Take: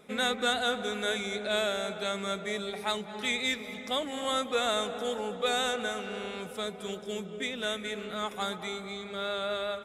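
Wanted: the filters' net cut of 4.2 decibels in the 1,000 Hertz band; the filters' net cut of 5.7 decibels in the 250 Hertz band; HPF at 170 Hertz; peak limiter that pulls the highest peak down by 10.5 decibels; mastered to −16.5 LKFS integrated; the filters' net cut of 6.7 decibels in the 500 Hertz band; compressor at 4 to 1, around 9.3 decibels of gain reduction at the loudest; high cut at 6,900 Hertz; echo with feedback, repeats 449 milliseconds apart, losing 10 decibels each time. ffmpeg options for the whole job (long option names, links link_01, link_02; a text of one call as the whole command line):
ffmpeg -i in.wav -af "highpass=170,lowpass=6900,equalizer=frequency=250:width_type=o:gain=-4,equalizer=frequency=500:width_type=o:gain=-6,equalizer=frequency=1000:width_type=o:gain=-4,acompressor=threshold=-38dB:ratio=4,alimiter=level_in=11.5dB:limit=-24dB:level=0:latency=1,volume=-11.5dB,aecho=1:1:449|898|1347|1796:0.316|0.101|0.0324|0.0104,volume=27.5dB" out.wav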